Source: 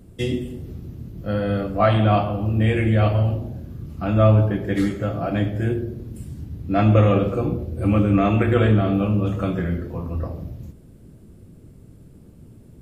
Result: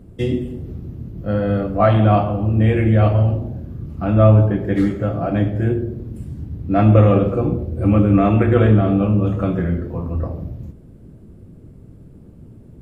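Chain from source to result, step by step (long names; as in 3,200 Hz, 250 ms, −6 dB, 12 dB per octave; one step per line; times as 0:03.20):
high-shelf EQ 2,400 Hz −11.5 dB
level +4 dB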